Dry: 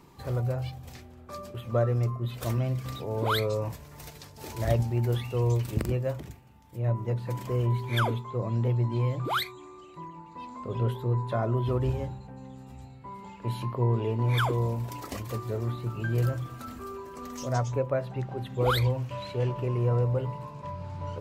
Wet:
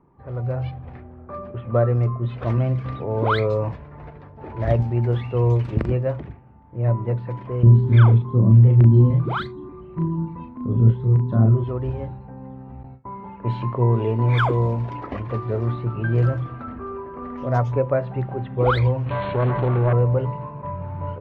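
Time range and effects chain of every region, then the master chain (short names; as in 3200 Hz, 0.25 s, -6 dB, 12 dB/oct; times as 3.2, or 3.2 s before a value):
7.63–11.64 resonant low shelf 380 Hz +12.5 dB, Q 1.5 + LFO notch square 1.7 Hz 270–2300 Hz + doubler 36 ms -3.5 dB
12.83–15.84 gate with hold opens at -36 dBFS, closes at -44 dBFS + high shelf 6200 Hz +10.5 dB
19.06–19.93 self-modulated delay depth 0.68 ms + brick-wall FIR low-pass 4400 Hz + fast leveller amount 50%
whole clip: LPF 2100 Hz 12 dB/oct; low-pass opened by the level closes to 1200 Hz, open at -22.5 dBFS; AGC gain up to 11 dB; gain -3.5 dB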